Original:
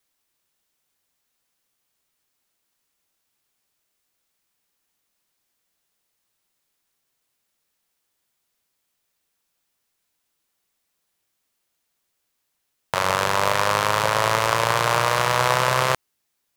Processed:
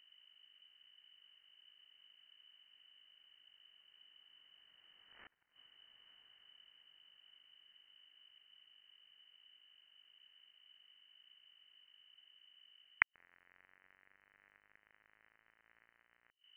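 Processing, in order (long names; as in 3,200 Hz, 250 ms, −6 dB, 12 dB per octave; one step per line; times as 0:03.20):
source passing by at 0:05.48, 31 m/s, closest 1.7 metres
camcorder AGC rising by 26 dB per second
gate with flip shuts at −21 dBFS, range −24 dB
leveller curve on the samples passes 5
pitch vibrato 1.7 Hz 10 cents
background noise brown −73 dBFS
parametric band 1,200 Hz +14.5 dB 1.4 octaves
mains hum 50 Hz, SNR 22 dB
gate with flip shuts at −34 dBFS, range −27 dB
voice inversion scrambler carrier 3,000 Hz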